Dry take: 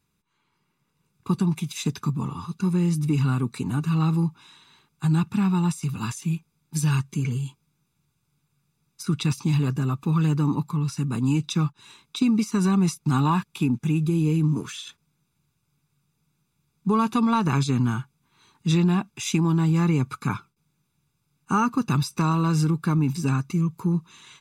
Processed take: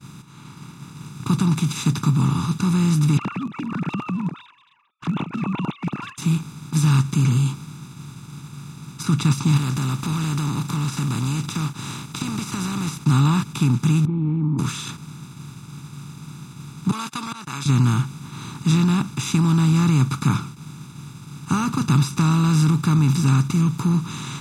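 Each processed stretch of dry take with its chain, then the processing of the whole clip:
3.17–6.18 sine-wave speech + HPF 430 Hz + envelope flanger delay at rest 5.7 ms, full sweep at -28.5 dBFS
9.56–13.03 spectral contrast lowered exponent 0.62 + compressor 4:1, threshold -38 dBFS
14.05–14.59 vocal tract filter u + air absorption 420 m
16.91–17.66 HPF 1300 Hz + gate -41 dBFS, range -35 dB + auto swell 0.509 s
whole clip: per-bin compression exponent 0.4; ten-band EQ 125 Hz +8 dB, 500 Hz -9 dB, 1000 Hz -4 dB; expander -31 dBFS; gain -2.5 dB

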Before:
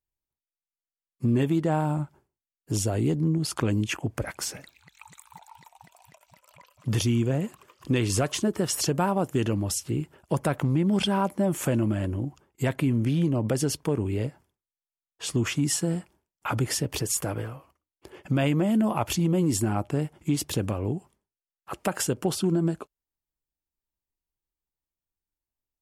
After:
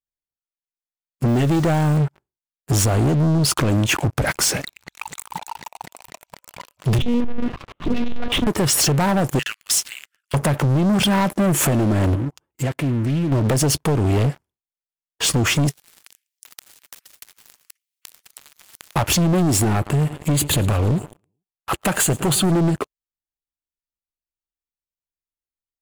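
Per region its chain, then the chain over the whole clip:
1.28–1.98 level-crossing sampler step -48 dBFS + bell 5500 Hz +5.5 dB 1.7 oct
6.98–8.47 low shelf 260 Hz +11.5 dB + compressor 4:1, threshold -26 dBFS + monotone LPC vocoder at 8 kHz 240 Hz
9.39–10.34 steep high-pass 1400 Hz 48 dB/oct + high shelf 7900 Hz -4 dB
12.15–13.32 compressor 2:1, threshold -46 dBFS + notch comb 200 Hz + Doppler distortion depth 0.19 ms
15.69–18.96 steep high-pass 2000 Hz + compressor 8:1, threshold -42 dBFS + spectral compressor 10:1
19.75–22.52 Butterworth band-stop 5400 Hz, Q 3 + bell 380 Hz -4 dB 2.8 oct + feedback echo 0.112 s, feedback 58%, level -23 dB
whole clip: dynamic EQ 140 Hz, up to +5 dB, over -43 dBFS, Q 4.8; compressor 16:1, threshold -25 dBFS; sample leveller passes 5

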